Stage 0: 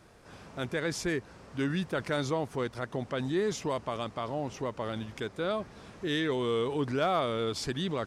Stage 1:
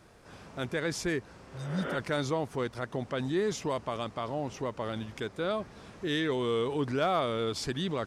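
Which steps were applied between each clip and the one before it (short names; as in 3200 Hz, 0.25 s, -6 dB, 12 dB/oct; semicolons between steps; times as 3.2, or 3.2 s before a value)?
spectral repair 1.48–1.93, 220–3600 Hz both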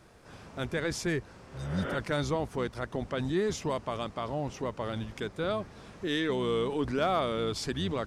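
octaver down 1 oct, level -6 dB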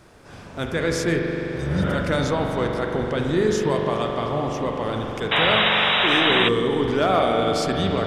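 spring tank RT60 3.9 s, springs 42 ms, chirp 40 ms, DRR 0.5 dB; painted sound noise, 5.31–6.49, 540–3900 Hz -26 dBFS; gain +6.5 dB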